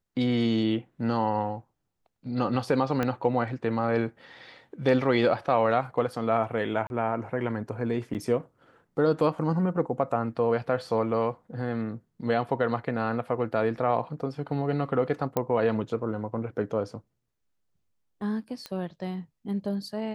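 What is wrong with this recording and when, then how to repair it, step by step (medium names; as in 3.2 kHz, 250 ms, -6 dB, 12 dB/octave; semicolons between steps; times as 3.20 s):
3.03 s: pop -14 dBFS
6.87–6.90 s: dropout 31 ms
8.14–8.15 s: dropout 8.1 ms
15.37 s: pop -13 dBFS
18.66 s: pop -21 dBFS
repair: de-click; interpolate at 6.87 s, 31 ms; interpolate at 8.14 s, 8.1 ms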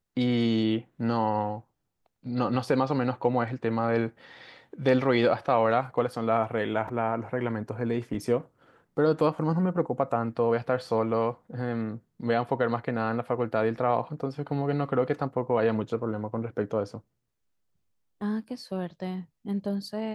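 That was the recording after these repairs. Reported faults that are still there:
3.03 s: pop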